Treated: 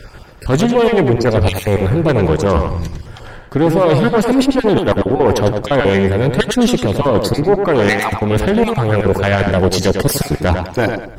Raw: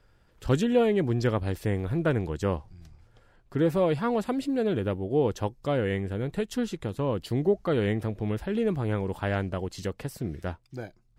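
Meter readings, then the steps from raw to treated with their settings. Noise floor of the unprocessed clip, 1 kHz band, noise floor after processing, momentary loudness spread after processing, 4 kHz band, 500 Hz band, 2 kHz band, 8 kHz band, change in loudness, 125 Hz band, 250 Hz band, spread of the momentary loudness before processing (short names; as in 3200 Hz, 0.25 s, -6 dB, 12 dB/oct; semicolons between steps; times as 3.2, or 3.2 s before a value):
-62 dBFS, +16.5 dB, -35 dBFS, 5 LU, +18.0 dB, +13.5 dB, +16.5 dB, +20.5 dB, +13.5 dB, +13.0 dB, +13.0 dB, 11 LU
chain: random spectral dropouts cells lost 26%; reverse; compressor 12:1, threshold -35 dBFS, peak gain reduction 18 dB; reverse; one-sided clip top -40 dBFS; tube stage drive 34 dB, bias 0.55; on a send: tape echo 0.1 s, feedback 38%, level -5 dB, low-pass 4400 Hz; on the sum: maximiser +31.5 dB; gain -1 dB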